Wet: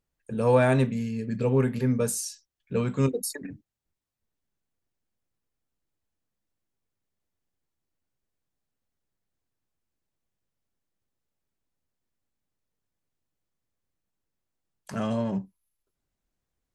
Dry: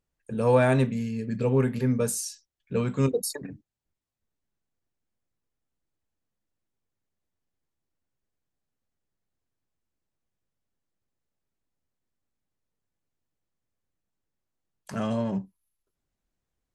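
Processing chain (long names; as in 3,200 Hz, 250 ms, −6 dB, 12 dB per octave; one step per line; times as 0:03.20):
0:03.11–0:03.51: octave-band graphic EQ 125/250/500/1,000/2,000/4,000 Hz −12/+6/−4/−8/+6/−4 dB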